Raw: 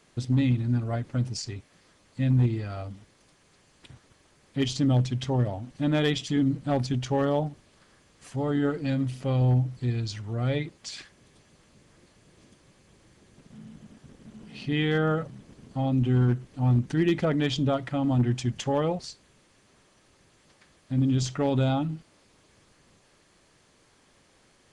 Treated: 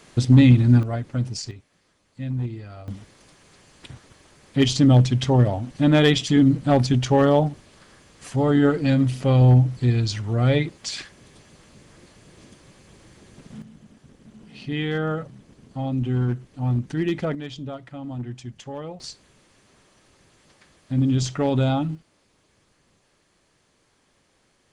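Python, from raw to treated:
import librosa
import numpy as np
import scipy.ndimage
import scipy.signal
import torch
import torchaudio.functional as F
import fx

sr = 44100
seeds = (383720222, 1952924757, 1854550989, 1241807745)

y = fx.gain(x, sr, db=fx.steps((0.0, 10.5), (0.83, 2.5), (1.51, -5.0), (2.88, 8.0), (13.62, -0.5), (17.35, -8.5), (19.0, 3.5), (21.95, -3.0)))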